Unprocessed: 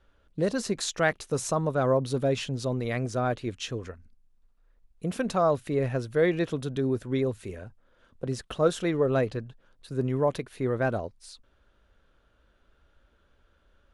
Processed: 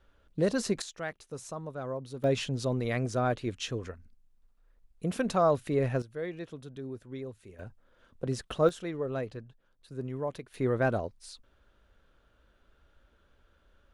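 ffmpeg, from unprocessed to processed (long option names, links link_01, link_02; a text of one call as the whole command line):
ffmpeg -i in.wav -af "asetnsamples=nb_out_samples=441:pad=0,asendcmd='0.82 volume volume -12.5dB;2.24 volume volume -1dB;6.02 volume volume -13dB;7.59 volume volume -1dB;8.69 volume volume -9dB;10.54 volume volume -0.5dB',volume=-0.5dB" out.wav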